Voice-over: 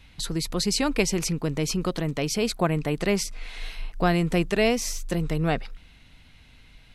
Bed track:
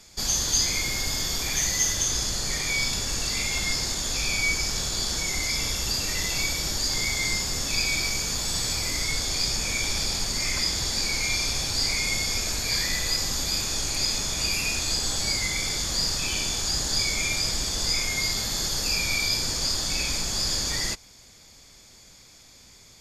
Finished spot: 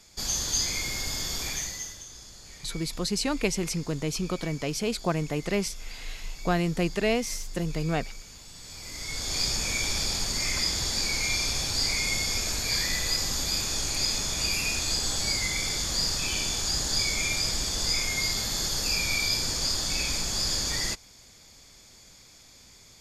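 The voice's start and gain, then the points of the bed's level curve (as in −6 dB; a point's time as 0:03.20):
2.45 s, −3.5 dB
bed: 0:01.48 −4 dB
0:02.06 −19.5 dB
0:08.56 −19.5 dB
0:09.38 −1.5 dB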